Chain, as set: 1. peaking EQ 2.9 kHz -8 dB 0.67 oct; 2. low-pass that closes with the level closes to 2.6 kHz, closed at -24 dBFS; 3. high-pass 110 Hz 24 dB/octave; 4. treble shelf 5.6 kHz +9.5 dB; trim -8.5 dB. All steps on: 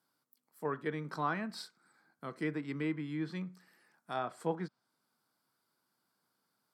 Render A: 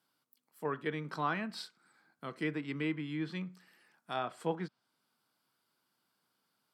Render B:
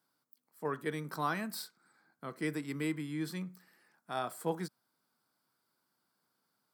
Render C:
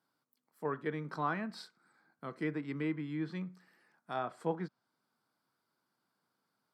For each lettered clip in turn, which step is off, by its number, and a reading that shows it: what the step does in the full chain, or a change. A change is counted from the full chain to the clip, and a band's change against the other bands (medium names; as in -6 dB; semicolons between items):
1, 4 kHz band +3.5 dB; 2, 8 kHz band +9.5 dB; 4, 4 kHz band -3.0 dB